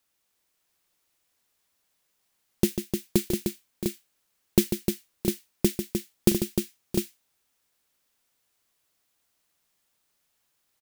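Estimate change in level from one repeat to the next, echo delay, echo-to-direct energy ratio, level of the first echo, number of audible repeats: no regular repeats, 145 ms, -2.0 dB, -9.0 dB, 4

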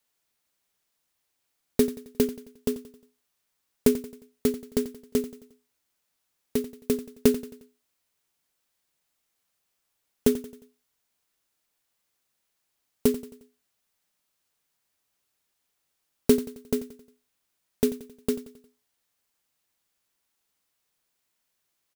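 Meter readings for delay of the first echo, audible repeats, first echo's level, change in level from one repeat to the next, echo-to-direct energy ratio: 89 ms, 4, -15.0 dB, -6.5 dB, -14.0 dB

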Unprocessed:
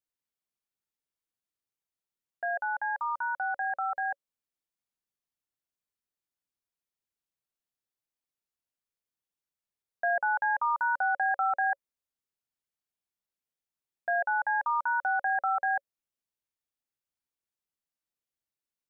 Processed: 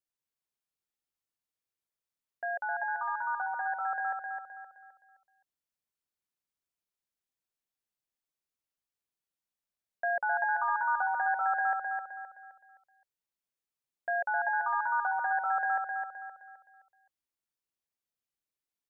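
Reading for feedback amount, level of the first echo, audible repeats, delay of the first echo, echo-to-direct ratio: 38%, -4.5 dB, 4, 260 ms, -4.0 dB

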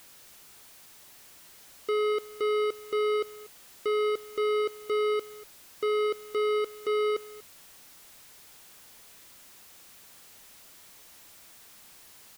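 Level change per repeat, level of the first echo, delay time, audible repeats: no regular repeats, -20.0 dB, 240 ms, 1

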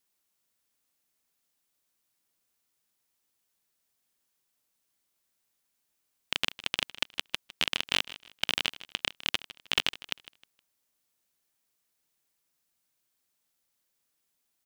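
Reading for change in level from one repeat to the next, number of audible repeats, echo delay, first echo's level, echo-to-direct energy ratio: -10.5 dB, 2, 156 ms, -17.0 dB, -16.5 dB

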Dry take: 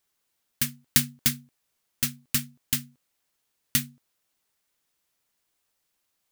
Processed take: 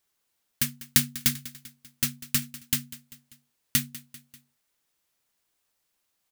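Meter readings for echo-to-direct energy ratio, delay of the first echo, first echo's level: -16.0 dB, 196 ms, -17.5 dB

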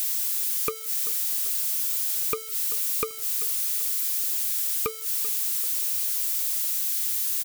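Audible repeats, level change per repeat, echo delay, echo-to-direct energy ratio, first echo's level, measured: 3, -7.5 dB, 388 ms, -15.5 dB, -16.5 dB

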